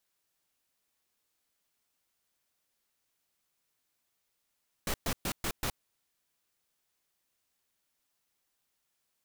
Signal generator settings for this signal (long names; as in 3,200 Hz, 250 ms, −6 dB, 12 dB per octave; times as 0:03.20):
noise bursts pink, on 0.07 s, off 0.12 s, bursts 5, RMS −32 dBFS